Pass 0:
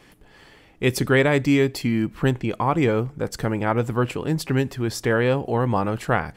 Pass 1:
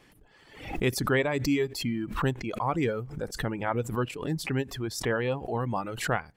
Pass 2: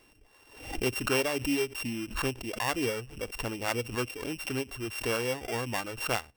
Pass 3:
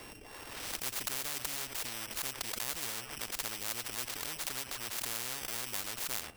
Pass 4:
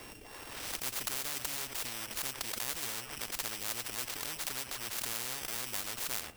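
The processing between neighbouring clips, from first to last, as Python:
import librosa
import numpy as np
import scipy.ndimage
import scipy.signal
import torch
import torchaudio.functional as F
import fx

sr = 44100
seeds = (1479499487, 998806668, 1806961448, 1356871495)

y1 = fx.dereverb_blind(x, sr, rt60_s=1.7)
y1 = fx.pre_swell(y1, sr, db_per_s=87.0)
y1 = F.gain(torch.from_numpy(y1), -6.5).numpy()
y2 = np.r_[np.sort(y1[:len(y1) // 16 * 16].reshape(-1, 16), axis=1).ravel(), y1[len(y1) // 16 * 16:]]
y2 = fx.peak_eq(y2, sr, hz=160.0, db=-13.5, octaves=0.58)
y2 = F.gain(torch.from_numpy(y2), -1.5).numpy()
y3 = y2 + 10.0 ** (-24.0 / 20.0) * np.pad(y2, (int(89 * sr / 1000.0), 0))[:len(y2)]
y3 = fx.spectral_comp(y3, sr, ratio=10.0)
y4 = fx.mod_noise(y3, sr, seeds[0], snr_db=11)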